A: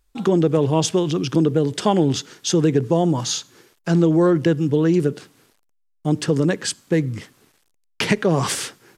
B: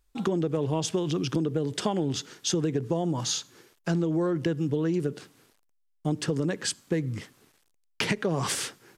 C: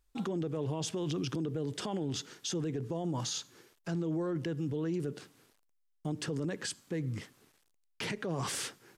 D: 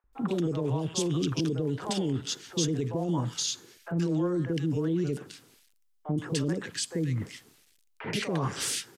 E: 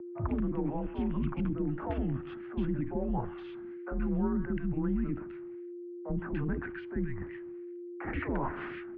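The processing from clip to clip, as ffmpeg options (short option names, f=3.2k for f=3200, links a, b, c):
-af "acompressor=threshold=-19dB:ratio=6,volume=-4dB"
-af "alimiter=limit=-23dB:level=0:latency=1:release=11,volume=-4dB"
-filter_complex "[0:a]acrossover=split=590|1800[a][b][c];[a]adelay=40[d];[c]adelay=130[e];[d][b][e]amix=inputs=3:normalize=0,volume=6.5dB"
-af "aeval=exprs='val(0)+0.0112*sin(2*PI*480*n/s)':c=same,lowshelf=f=330:g=-3.5,highpass=f=160:t=q:w=0.5412,highpass=f=160:t=q:w=1.307,lowpass=f=2.2k:t=q:w=0.5176,lowpass=f=2.2k:t=q:w=0.7071,lowpass=f=2.2k:t=q:w=1.932,afreqshift=-130"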